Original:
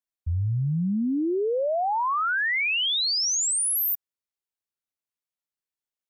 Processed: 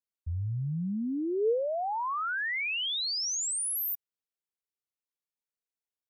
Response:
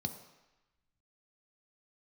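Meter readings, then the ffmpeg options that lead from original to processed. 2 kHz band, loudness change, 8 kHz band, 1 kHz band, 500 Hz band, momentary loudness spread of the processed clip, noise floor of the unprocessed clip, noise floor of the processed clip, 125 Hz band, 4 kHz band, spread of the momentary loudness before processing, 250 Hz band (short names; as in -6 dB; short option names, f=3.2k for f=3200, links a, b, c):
-7.0 dB, -6.5 dB, -7.0 dB, -7.0 dB, -3.5 dB, 5 LU, under -85 dBFS, under -85 dBFS, -7.0 dB, -7.0 dB, 5 LU, -6.5 dB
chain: -af "equalizer=f=450:t=o:w=0.3:g=7.5,volume=-7dB"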